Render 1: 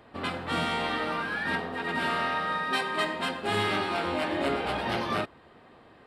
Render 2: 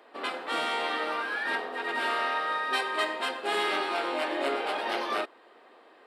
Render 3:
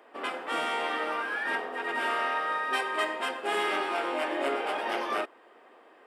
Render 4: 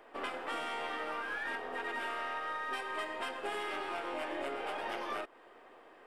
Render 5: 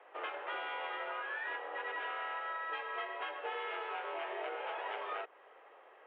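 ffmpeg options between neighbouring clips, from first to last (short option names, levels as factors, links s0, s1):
-af "highpass=f=330:w=0.5412,highpass=f=330:w=1.3066"
-af "equalizer=f=4100:t=o:w=0.36:g=-11"
-af "aeval=exprs='if(lt(val(0),0),0.708*val(0),val(0))':c=same,acompressor=threshold=0.0178:ratio=6"
-af "aeval=exprs='val(0)+0.000708*(sin(2*PI*50*n/s)+sin(2*PI*2*50*n/s)/2+sin(2*PI*3*50*n/s)/3+sin(2*PI*4*50*n/s)/4+sin(2*PI*5*50*n/s)/5)':c=same,highpass=f=320:t=q:w=0.5412,highpass=f=320:t=q:w=1.307,lowpass=f=3200:t=q:w=0.5176,lowpass=f=3200:t=q:w=0.7071,lowpass=f=3200:t=q:w=1.932,afreqshift=59,volume=0.841"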